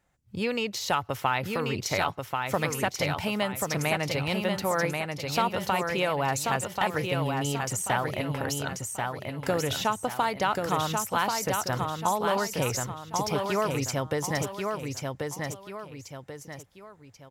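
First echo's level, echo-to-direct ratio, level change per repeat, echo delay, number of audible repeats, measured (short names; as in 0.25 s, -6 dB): -4.0 dB, -3.5 dB, -8.5 dB, 1.086 s, 3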